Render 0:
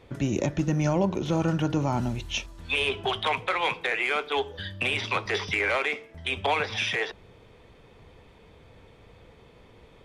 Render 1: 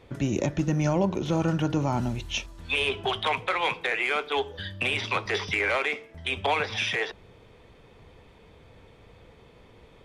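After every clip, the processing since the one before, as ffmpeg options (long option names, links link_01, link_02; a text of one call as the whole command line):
ffmpeg -i in.wav -af anull out.wav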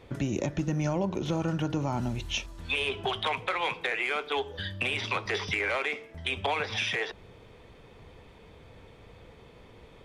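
ffmpeg -i in.wav -af "acompressor=threshold=-30dB:ratio=2,volume=1dB" out.wav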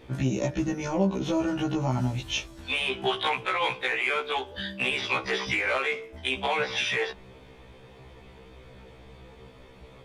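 ffmpeg -i in.wav -af "afftfilt=real='re*1.73*eq(mod(b,3),0)':imag='im*1.73*eq(mod(b,3),0)':win_size=2048:overlap=0.75,volume=5dB" out.wav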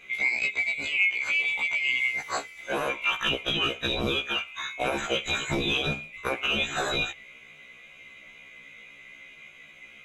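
ffmpeg -i in.wav -af "afftfilt=real='real(if(lt(b,920),b+92*(1-2*mod(floor(b/92),2)),b),0)':imag='imag(if(lt(b,920),b+92*(1-2*mod(floor(b/92),2)),b),0)':win_size=2048:overlap=0.75" out.wav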